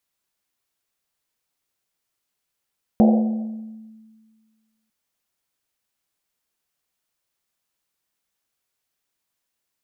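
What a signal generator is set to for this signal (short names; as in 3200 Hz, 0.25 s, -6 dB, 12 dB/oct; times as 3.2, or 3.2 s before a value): Risset drum length 1.90 s, pitch 220 Hz, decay 1.77 s, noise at 630 Hz, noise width 300 Hz, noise 20%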